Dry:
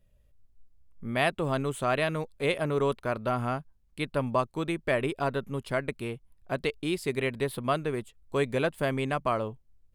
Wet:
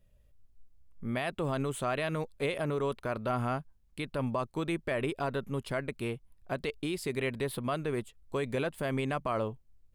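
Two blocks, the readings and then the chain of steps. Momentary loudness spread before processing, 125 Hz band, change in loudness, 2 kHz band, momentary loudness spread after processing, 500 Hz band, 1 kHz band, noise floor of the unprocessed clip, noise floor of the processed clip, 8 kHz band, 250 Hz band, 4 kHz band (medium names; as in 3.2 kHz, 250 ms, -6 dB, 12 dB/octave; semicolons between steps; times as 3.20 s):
9 LU, -2.5 dB, -4.0 dB, -5.0 dB, 6 LU, -4.0 dB, -4.5 dB, -64 dBFS, -64 dBFS, -1.5 dB, -2.5 dB, -4.5 dB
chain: peak limiter -22 dBFS, peak gain reduction 10.5 dB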